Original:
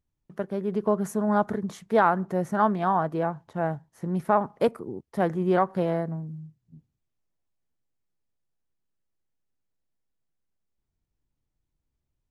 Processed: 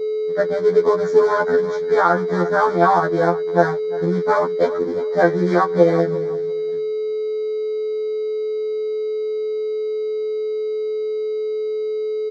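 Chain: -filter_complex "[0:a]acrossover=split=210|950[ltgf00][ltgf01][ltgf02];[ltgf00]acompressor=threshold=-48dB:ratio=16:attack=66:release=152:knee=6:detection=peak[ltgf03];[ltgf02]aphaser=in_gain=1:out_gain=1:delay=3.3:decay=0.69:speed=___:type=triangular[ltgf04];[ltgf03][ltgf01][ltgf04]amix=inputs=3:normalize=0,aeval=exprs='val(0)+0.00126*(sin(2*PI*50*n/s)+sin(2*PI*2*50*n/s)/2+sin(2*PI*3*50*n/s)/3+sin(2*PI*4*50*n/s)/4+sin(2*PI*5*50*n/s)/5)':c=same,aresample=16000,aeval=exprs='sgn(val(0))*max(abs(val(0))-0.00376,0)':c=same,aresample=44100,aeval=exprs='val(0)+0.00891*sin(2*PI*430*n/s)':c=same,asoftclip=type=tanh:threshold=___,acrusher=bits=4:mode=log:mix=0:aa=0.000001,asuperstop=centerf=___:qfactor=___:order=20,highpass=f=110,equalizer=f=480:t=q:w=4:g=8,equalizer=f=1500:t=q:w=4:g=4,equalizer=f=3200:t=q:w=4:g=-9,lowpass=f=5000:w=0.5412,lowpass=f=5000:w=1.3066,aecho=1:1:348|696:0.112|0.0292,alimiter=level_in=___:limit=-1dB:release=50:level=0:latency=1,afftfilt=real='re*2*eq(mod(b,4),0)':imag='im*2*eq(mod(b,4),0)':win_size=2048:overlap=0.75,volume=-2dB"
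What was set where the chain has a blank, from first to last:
2, -10.5dB, 2700, 3.9, 15dB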